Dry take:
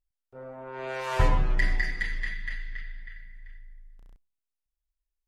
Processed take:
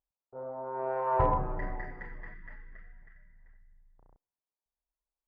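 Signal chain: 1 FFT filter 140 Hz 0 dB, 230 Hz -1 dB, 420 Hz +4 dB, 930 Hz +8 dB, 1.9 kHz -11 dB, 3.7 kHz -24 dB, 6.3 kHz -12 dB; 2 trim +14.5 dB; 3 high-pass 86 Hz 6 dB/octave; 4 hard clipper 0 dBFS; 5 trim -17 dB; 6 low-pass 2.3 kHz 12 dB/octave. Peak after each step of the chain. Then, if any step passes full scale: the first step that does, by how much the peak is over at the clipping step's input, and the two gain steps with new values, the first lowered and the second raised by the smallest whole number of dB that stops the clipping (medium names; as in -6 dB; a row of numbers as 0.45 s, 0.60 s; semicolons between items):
-9.0 dBFS, +5.5 dBFS, +3.5 dBFS, 0.0 dBFS, -17.0 dBFS, -16.5 dBFS; step 2, 3.5 dB; step 2 +10.5 dB, step 5 -13 dB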